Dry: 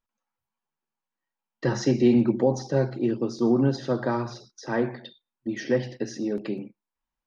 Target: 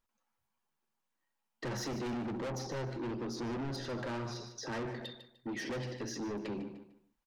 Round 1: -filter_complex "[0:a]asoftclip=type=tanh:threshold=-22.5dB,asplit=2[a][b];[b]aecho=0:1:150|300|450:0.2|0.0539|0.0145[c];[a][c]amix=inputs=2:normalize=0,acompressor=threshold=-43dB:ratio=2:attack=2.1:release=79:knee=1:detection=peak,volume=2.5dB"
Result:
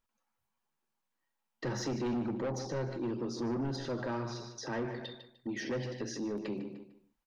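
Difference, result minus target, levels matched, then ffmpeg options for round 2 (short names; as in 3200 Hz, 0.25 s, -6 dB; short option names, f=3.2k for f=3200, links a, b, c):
soft clip: distortion -6 dB
-filter_complex "[0:a]asoftclip=type=tanh:threshold=-32.5dB,asplit=2[a][b];[b]aecho=0:1:150|300|450:0.2|0.0539|0.0145[c];[a][c]amix=inputs=2:normalize=0,acompressor=threshold=-43dB:ratio=2:attack=2.1:release=79:knee=1:detection=peak,volume=2.5dB"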